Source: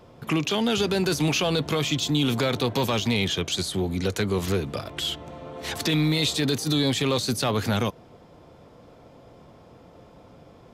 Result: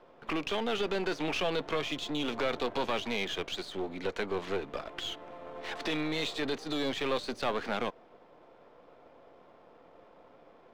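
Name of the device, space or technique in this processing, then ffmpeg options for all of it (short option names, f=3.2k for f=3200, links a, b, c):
crystal radio: -af "highpass=370,lowpass=2.7k,aeval=exprs='if(lt(val(0),0),0.447*val(0),val(0))':c=same,volume=-1.5dB"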